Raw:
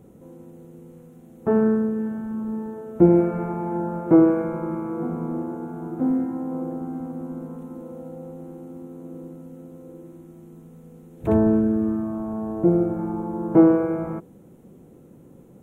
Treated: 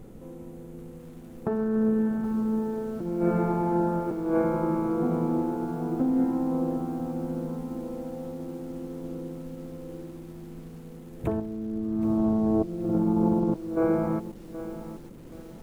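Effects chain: 11.41–13.76 s: tilt shelf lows +8.5 dB, about 1.3 kHz; compressor with a negative ratio -23 dBFS, ratio -1; added noise brown -47 dBFS; bit-crushed delay 775 ms, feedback 35%, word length 7-bit, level -13 dB; trim -3.5 dB

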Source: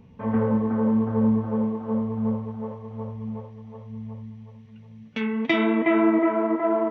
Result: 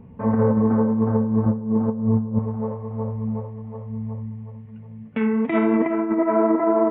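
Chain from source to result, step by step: 1.46–2.39 s: peaking EQ 160 Hz +9 dB 2.2 oct; compressor with a negative ratio -22 dBFS, ratio -0.5; Gaussian low-pass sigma 4.2 samples; on a send: reverberation RT60 1.0 s, pre-delay 21 ms, DRR 17 dB; on the sum: trim +4 dB

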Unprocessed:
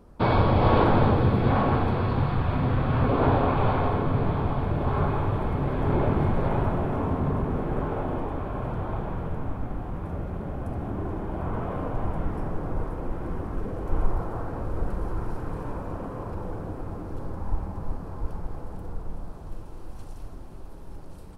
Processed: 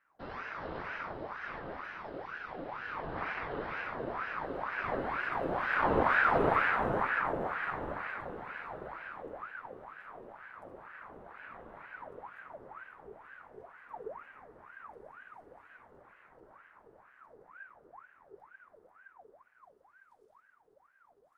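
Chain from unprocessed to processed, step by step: Doppler pass-by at 6.44 s, 6 m/s, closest 4.2 m; de-hum 51.48 Hz, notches 39; ring modulator with a swept carrier 1 kHz, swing 60%, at 2.1 Hz

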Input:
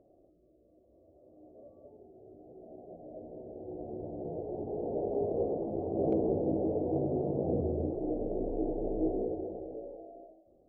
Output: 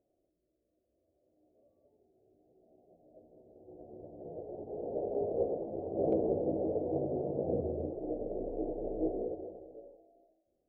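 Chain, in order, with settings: dynamic bell 550 Hz, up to +6 dB, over -45 dBFS, Q 1.8; upward expansion 1.5:1, over -48 dBFS; trim -3 dB

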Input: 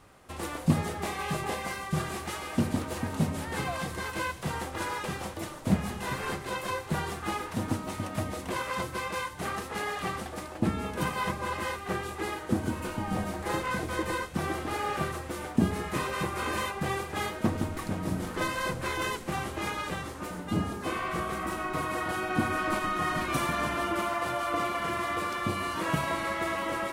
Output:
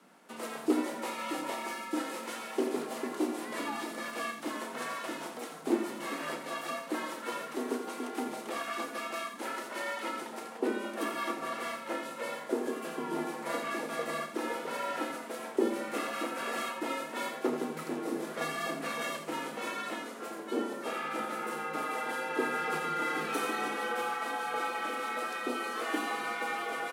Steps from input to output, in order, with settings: frequency shift +150 Hz; loudspeakers at several distances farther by 11 m -11 dB, 29 m -9 dB; trim -4.5 dB

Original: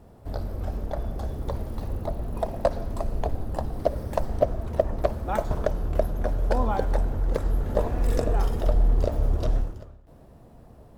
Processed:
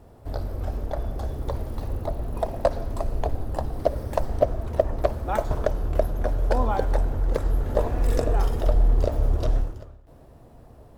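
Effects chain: peaking EQ 190 Hz -8 dB 0.34 oct; trim +1.5 dB

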